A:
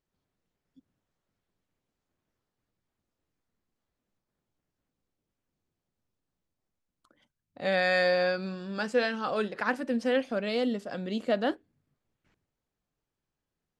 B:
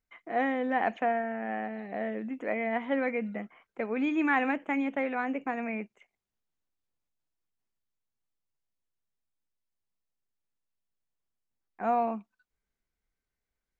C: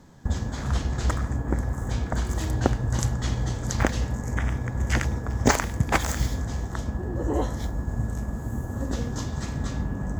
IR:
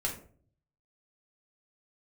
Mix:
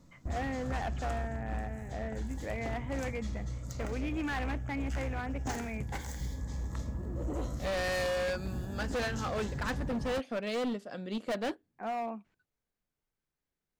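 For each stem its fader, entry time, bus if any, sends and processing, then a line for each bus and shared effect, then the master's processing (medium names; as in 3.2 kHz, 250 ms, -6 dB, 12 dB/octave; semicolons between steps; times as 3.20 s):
+2.0 dB, 0.00 s, no send, upward expansion 1.5:1, over -37 dBFS
-6.0 dB, 0.00 s, no send, none
-9.0 dB, 0.00 s, send -14.5 dB, Shepard-style phaser rising 0.28 Hz; auto duck -10 dB, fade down 1.75 s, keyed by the second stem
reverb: on, RT60 0.50 s, pre-delay 4 ms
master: hard clipper -30 dBFS, distortion -7 dB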